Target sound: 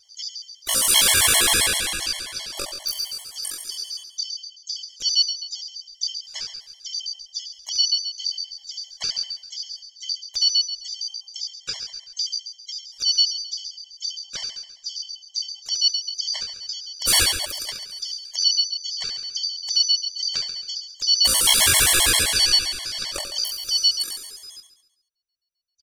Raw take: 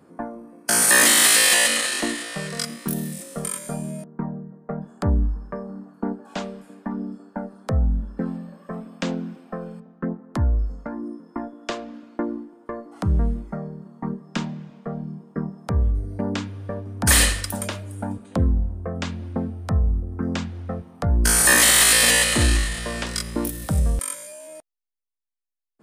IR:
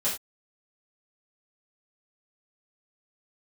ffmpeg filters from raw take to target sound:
-filter_complex "[0:a]afftfilt=real='real(if(lt(b,272),68*(eq(floor(b/68),0)*3+eq(floor(b/68),1)*2+eq(floor(b/68),2)*1+eq(floor(b/68),3)*0)+mod(b,68),b),0)':imag='imag(if(lt(b,272),68*(eq(floor(b/68),0)*3+eq(floor(b/68),1)*2+eq(floor(b/68),2)*1+eq(floor(b/68),3)*0)+mod(b,68),b),0)':win_size=2048:overlap=0.75,asubboost=boost=3:cutoff=92,asplit=4[link_01][link_02][link_03][link_04];[link_02]asetrate=29433,aresample=44100,atempo=1.49831,volume=-12dB[link_05];[link_03]asetrate=55563,aresample=44100,atempo=0.793701,volume=-11dB[link_06];[link_04]asetrate=58866,aresample=44100,atempo=0.749154,volume=-13dB[link_07];[link_01][link_05][link_06][link_07]amix=inputs=4:normalize=0,aecho=1:1:69|138|207|276|345|414|483:0.398|0.231|0.134|0.0777|0.0451|0.0261|0.0152,afftfilt=real='re*gt(sin(2*PI*7.6*pts/sr)*(1-2*mod(floor(b*sr/1024/570),2)),0)':imag='im*gt(sin(2*PI*7.6*pts/sr)*(1-2*mod(floor(b*sr/1024/570),2)),0)':win_size=1024:overlap=0.75"

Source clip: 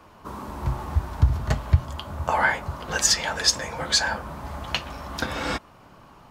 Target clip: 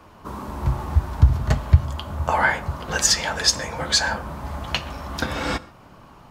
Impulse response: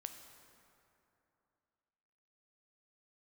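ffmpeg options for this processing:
-filter_complex "[0:a]asplit=2[link_01][link_02];[1:a]atrim=start_sample=2205,atrim=end_sample=6615,lowshelf=frequency=360:gain=7[link_03];[link_02][link_03]afir=irnorm=-1:irlink=0,volume=-2.5dB[link_04];[link_01][link_04]amix=inputs=2:normalize=0,volume=-1.5dB"

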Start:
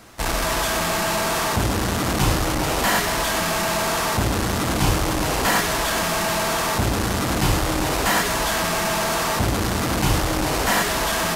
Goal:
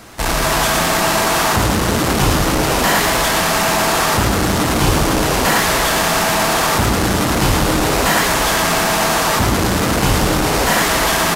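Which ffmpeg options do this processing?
ffmpeg -i in.wav -filter_complex "[0:a]asplit=2[link_01][link_02];[link_02]alimiter=limit=-16.5dB:level=0:latency=1,volume=2dB[link_03];[link_01][link_03]amix=inputs=2:normalize=0,asplit=8[link_04][link_05][link_06][link_07][link_08][link_09][link_10][link_11];[link_05]adelay=113,afreqshift=110,volume=-6.5dB[link_12];[link_06]adelay=226,afreqshift=220,volume=-11.9dB[link_13];[link_07]adelay=339,afreqshift=330,volume=-17.2dB[link_14];[link_08]adelay=452,afreqshift=440,volume=-22.6dB[link_15];[link_09]adelay=565,afreqshift=550,volume=-27.9dB[link_16];[link_10]adelay=678,afreqshift=660,volume=-33.3dB[link_17];[link_11]adelay=791,afreqshift=770,volume=-38.6dB[link_18];[link_04][link_12][link_13][link_14][link_15][link_16][link_17][link_18]amix=inputs=8:normalize=0" out.wav

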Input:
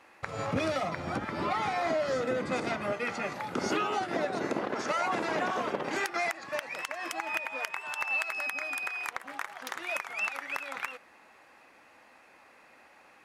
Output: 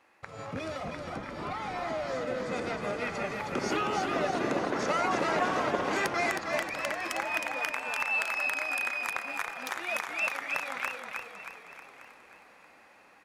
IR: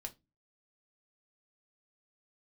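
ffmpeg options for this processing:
-filter_complex "[0:a]asplit=2[link_01][link_02];[link_02]asplit=6[link_03][link_04][link_05][link_06][link_07][link_08];[link_03]adelay=315,afreqshift=-31,volume=-5dB[link_09];[link_04]adelay=630,afreqshift=-62,volume=-11dB[link_10];[link_05]adelay=945,afreqshift=-93,volume=-17dB[link_11];[link_06]adelay=1260,afreqshift=-124,volume=-23.1dB[link_12];[link_07]adelay=1575,afreqshift=-155,volume=-29.1dB[link_13];[link_08]adelay=1890,afreqshift=-186,volume=-35.1dB[link_14];[link_09][link_10][link_11][link_12][link_13][link_14]amix=inputs=6:normalize=0[link_15];[link_01][link_15]amix=inputs=2:normalize=0,dynaudnorm=framelen=560:gausssize=11:maxgain=8dB,asplit=2[link_16][link_17];[link_17]aecho=0:1:1167:0.1[link_18];[link_16][link_18]amix=inputs=2:normalize=0,volume=-7dB"

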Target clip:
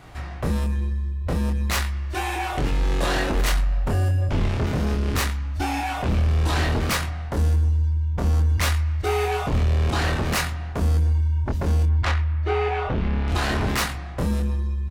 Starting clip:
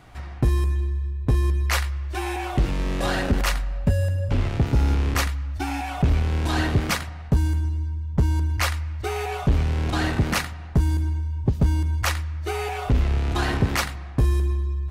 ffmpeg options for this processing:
ffmpeg -i in.wav -filter_complex "[0:a]asettb=1/sr,asplit=3[link_01][link_02][link_03];[link_01]atrim=end=11.864[link_04];[link_02]atrim=start=11.86:end=13.28,asetpts=PTS-STARTPTS,afade=type=in:duration=0.004:curve=qsin,afade=type=out:start_time=1.416:duration=0.004:curve=qsin,lowpass=2700[link_05];[link_03]atrim=start=13.276[link_06];[link_04][link_05]acrossfade=duration=0.004:curve1=hsin:curve2=qsin[link_07];[link_07][link_06]acrossfade=duration=0.004:curve1=qsin:curve2=hsin,aeval=exprs='0.237*sin(PI/2*2*val(0)/0.237)':channel_layout=same,asplit=2[link_08][link_09];[link_09]adelay=24,volume=-3.5dB[link_10];[link_08][link_10]amix=inputs=2:normalize=0,volume=-7dB" out.wav

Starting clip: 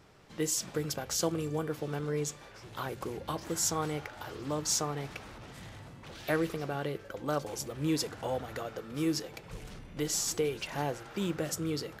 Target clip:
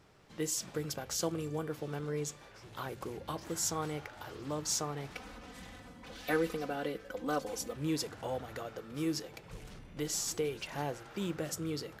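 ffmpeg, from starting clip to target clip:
ffmpeg -i in.wav -filter_complex "[0:a]asettb=1/sr,asplit=3[link_01][link_02][link_03];[link_01]atrim=end=5.144[link_04];[link_02]atrim=start=5.14:end=7.76,asetpts=PTS-STARTPTS,afade=type=in:duration=0.004:curve=qsin,afade=type=out:start_time=2.616:duration=0.004:curve=qsin,aecho=1:1:4:0.91,atrim=end_sample=115542[link_05];[link_03]atrim=start=7.756[link_06];[link_04][link_05]acrossfade=duration=0.004:curve1=hsin:curve2=qsin[link_07];[link_07][link_06]acrossfade=duration=0.004:curve1=qsin:curve2=hsin,volume=-3.5dB" out.wav

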